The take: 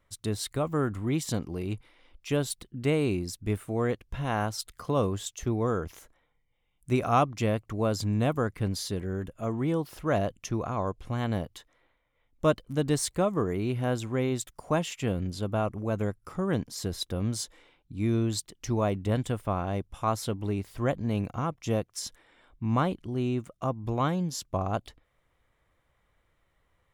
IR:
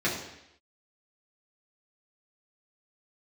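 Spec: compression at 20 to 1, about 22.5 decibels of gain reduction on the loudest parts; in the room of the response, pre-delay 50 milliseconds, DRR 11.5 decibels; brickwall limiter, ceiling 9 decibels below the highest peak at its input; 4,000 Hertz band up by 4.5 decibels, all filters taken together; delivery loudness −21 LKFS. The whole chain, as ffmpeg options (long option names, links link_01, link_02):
-filter_complex "[0:a]equalizer=frequency=4000:width_type=o:gain=5.5,acompressor=threshold=-40dB:ratio=20,alimiter=level_in=12dB:limit=-24dB:level=0:latency=1,volume=-12dB,asplit=2[link_01][link_02];[1:a]atrim=start_sample=2205,adelay=50[link_03];[link_02][link_03]afir=irnorm=-1:irlink=0,volume=-23dB[link_04];[link_01][link_04]amix=inputs=2:normalize=0,volume=25.5dB"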